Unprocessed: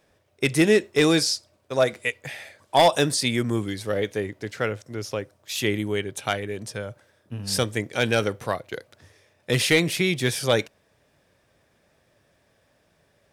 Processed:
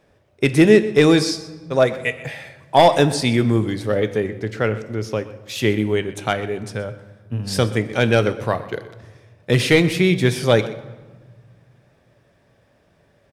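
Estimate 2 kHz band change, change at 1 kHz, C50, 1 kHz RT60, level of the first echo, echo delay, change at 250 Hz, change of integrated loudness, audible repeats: +3.0 dB, +5.0 dB, 13.0 dB, 1.3 s, -17.5 dB, 125 ms, +7.0 dB, +5.0 dB, 1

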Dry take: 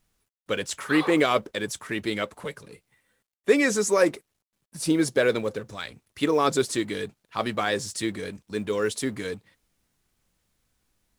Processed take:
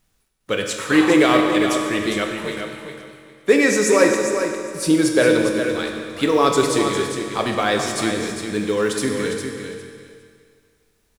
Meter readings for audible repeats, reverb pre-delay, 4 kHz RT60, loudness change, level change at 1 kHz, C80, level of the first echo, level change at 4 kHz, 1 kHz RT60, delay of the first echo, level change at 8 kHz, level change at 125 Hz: 2, 22 ms, 2.1 s, +6.5 dB, +7.0 dB, 3.0 dB, -7.5 dB, +7.0 dB, 2.2 s, 405 ms, +7.0 dB, +6.5 dB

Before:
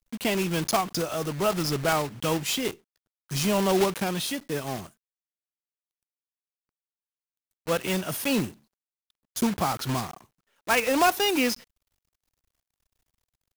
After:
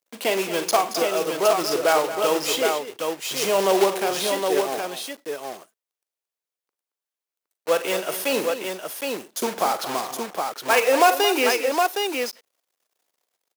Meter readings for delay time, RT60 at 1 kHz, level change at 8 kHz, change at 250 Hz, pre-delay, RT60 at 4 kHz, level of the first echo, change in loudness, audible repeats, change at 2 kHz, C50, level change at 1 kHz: 41 ms, no reverb, +4.5 dB, -2.0 dB, no reverb, no reverb, -12.5 dB, +3.5 dB, 4, +4.5 dB, no reverb, +6.5 dB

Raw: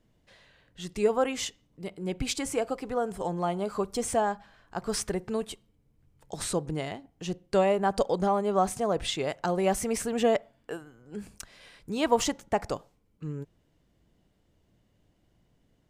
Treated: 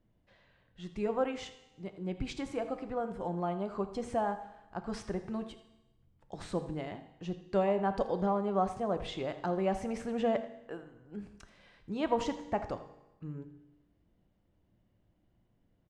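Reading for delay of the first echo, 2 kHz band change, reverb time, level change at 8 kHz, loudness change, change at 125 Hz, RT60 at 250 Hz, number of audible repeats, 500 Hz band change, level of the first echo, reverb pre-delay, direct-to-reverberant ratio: 82 ms, -7.5 dB, 1.0 s, -19.5 dB, -5.5 dB, -4.0 dB, 1.0 s, 1, -6.0 dB, -15.5 dB, 6 ms, 9.0 dB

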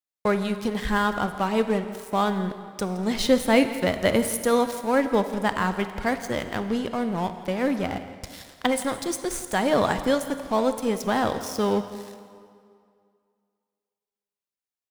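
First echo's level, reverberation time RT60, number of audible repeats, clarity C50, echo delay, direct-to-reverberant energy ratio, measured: -17.5 dB, 2.3 s, 1, 9.5 dB, 168 ms, 9.0 dB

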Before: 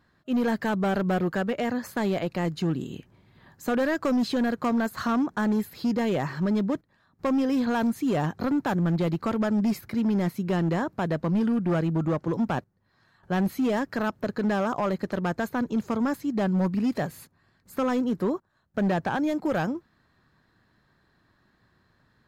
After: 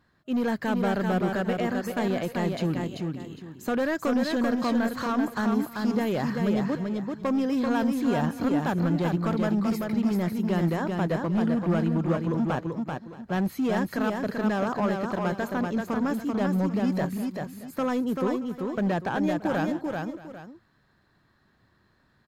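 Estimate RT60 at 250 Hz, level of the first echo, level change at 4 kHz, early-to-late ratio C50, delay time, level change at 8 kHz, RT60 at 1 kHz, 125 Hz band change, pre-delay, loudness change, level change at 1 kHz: no reverb, -4.0 dB, 0.0 dB, no reverb, 387 ms, no reading, no reverb, 0.0 dB, no reverb, 0.0 dB, 0.0 dB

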